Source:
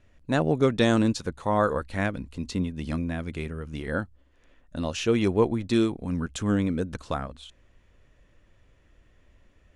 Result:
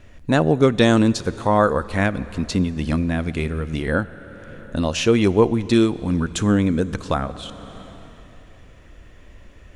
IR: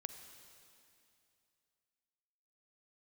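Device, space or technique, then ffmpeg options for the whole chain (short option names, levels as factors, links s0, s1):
ducked reverb: -filter_complex "[0:a]asplit=3[s0][s1][s2];[1:a]atrim=start_sample=2205[s3];[s1][s3]afir=irnorm=-1:irlink=0[s4];[s2]apad=whole_len=430397[s5];[s4][s5]sidechaincompress=threshold=0.0112:ratio=3:attack=16:release=569,volume=2.99[s6];[s0][s6]amix=inputs=2:normalize=0,volume=1.58"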